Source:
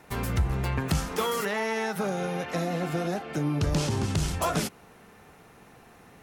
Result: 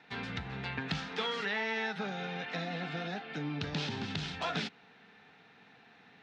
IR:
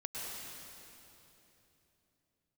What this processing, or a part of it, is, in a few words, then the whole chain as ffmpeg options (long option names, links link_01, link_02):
kitchen radio: -af "highpass=200,equalizer=frequency=350:width_type=q:width=4:gain=-10,equalizer=frequency=570:width_type=q:width=4:gain=-10,equalizer=frequency=1100:width_type=q:width=4:gain=-8,equalizer=frequency=1700:width_type=q:width=4:gain=4,equalizer=frequency=2500:width_type=q:width=4:gain=3,equalizer=frequency=3700:width_type=q:width=4:gain=7,lowpass=frequency=4600:width=0.5412,lowpass=frequency=4600:width=1.3066,volume=-4dB"